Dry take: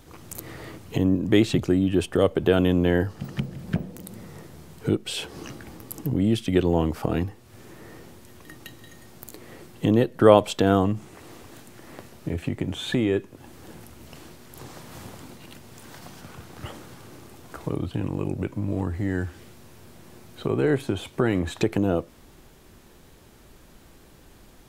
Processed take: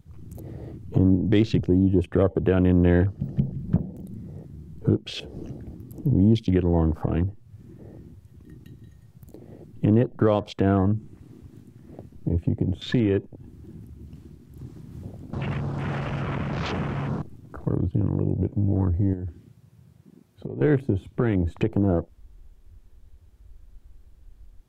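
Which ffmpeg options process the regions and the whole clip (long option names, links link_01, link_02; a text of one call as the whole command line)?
ffmpeg -i in.wav -filter_complex "[0:a]asettb=1/sr,asplit=3[link_01][link_02][link_03];[link_01]atrim=end=15.334[link_04];[link_02]atrim=start=15.33:end=17.22,asetpts=PTS-STARTPTS,afade=type=in:duration=0.004:curve=qsin,afade=type=out:start_time=1.886:duration=0.004:curve=qsin,afreqshift=-140,aeval=exprs='0.0596*sin(PI/2*5.62*val(0)/0.0596)':channel_layout=same,highpass=110,lowpass=5100[link_05];[link_03]atrim=start=17.216[link_06];[link_04][link_05]acrossfade=duration=0.004:curve1=hsin:curve2=qsin[link_07];[link_07][link_06]acrossfade=duration=0.004:curve1=qsin:curve2=hsin,asettb=1/sr,asplit=3[link_08][link_09][link_10];[link_08]atrim=end=19.134[link_11];[link_09]atrim=start=19.13:end=20.61,asetpts=PTS-STARTPTS,afade=type=in:duration=0.004:curve=qsin,afade=type=out:start_time=1.476:duration=0.004:curve=qsin,highpass=frequency=97:poles=1,acompressor=threshold=-30dB:ratio=10:attack=3.2:release=140:knee=1:detection=peak[link_12];[link_10]atrim=start=20.606[link_13];[link_11][link_12]acrossfade=duration=0.004:curve1=hsin:curve2=qsin[link_14];[link_14][link_13]acrossfade=duration=0.004:curve1=qsin:curve2=hsin,afwtdn=0.0158,lowshelf=frequency=210:gain=10,alimiter=limit=-7.5dB:level=0:latency=1:release=429,volume=-1.5dB" out.wav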